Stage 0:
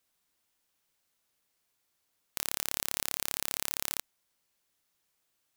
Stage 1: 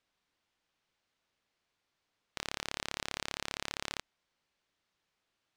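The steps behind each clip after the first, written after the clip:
low-pass filter 4,200 Hz 12 dB per octave
level +1 dB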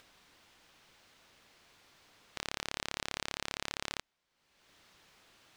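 upward compression, threshold −47 dBFS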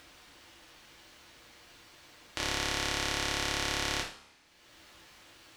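coupled-rooms reverb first 0.44 s, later 1.5 s, from −20 dB, DRR −3 dB
level +3 dB

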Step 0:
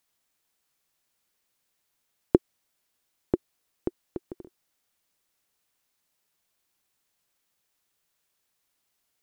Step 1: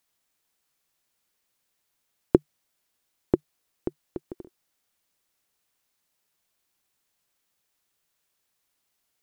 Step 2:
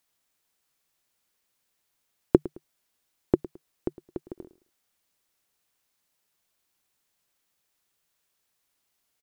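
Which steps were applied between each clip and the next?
dynamic equaliser 150 Hz, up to +4 dB, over −51 dBFS, Q 6.7; in parallel at −2 dB: output level in coarse steps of 23 dB; on the sum: level −1 dB
repeating echo 108 ms, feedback 28%, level −18 dB

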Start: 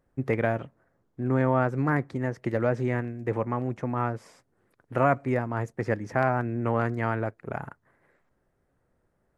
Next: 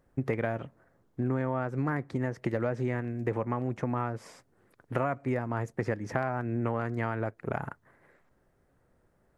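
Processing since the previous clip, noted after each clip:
downward compressor 5 to 1, threshold −30 dBFS, peak gain reduction 12.5 dB
level +3.5 dB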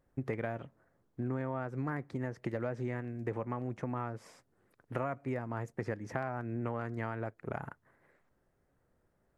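tape wow and flutter 25 cents
level −6 dB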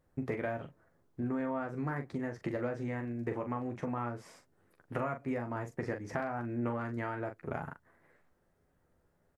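ambience of single reflections 12 ms −6.5 dB, 42 ms −7.5 dB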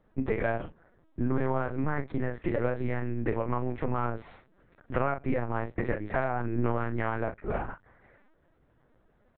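linear-prediction vocoder at 8 kHz pitch kept
level +7 dB

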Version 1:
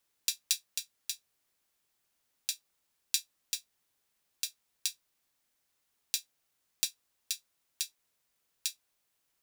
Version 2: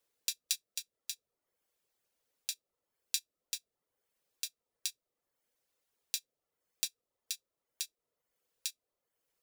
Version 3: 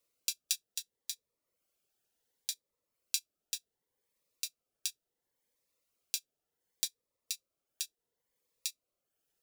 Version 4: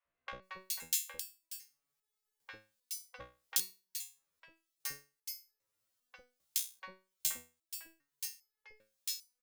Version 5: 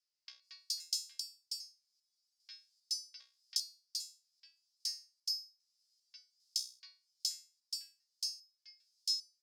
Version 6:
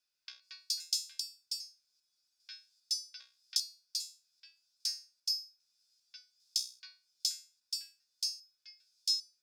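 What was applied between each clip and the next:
reverb reduction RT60 0.64 s; parametric band 490 Hz +11 dB 0.67 octaves; level −3.5 dB
phaser whose notches keep moving one way rising 0.69 Hz; level +1 dB
spectral envelope flattened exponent 0.1; three-band delay without the direct sound mids, lows, highs 50/420 ms, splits 620/2,500 Hz; step-sequenced resonator 2.5 Hz 62–430 Hz; level +10.5 dB
downward compressor 2 to 1, threshold −45 dBFS, peak gain reduction 10.5 dB; four-pole ladder band-pass 5,200 Hz, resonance 80%; level +15 dB
hollow resonant body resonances 1,500/2,500/3,500 Hz, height 12 dB, ringing for 25 ms; level +3 dB

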